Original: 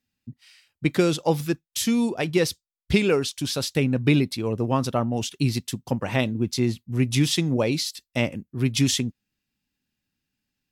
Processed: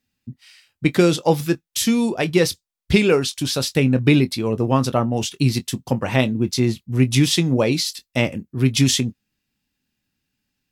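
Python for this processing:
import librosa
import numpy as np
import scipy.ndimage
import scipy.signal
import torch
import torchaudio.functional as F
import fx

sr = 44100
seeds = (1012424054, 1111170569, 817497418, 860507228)

y = fx.doubler(x, sr, ms=23.0, db=-13.0)
y = y * 10.0 ** (4.5 / 20.0)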